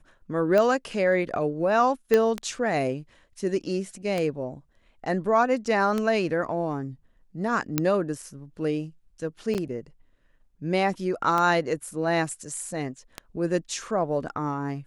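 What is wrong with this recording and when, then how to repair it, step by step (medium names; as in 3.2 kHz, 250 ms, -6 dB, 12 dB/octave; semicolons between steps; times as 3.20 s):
tick 33 1/3 rpm -13 dBFS
2.14 s: pop -9 dBFS
7.78 s: pop
9.54–9.55 s: dropout 8.1 ms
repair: de-click; interpolate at 9.54 s, 8.1 ms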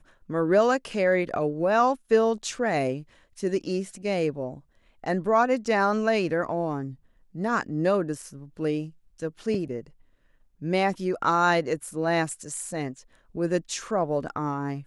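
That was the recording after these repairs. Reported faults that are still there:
nothing left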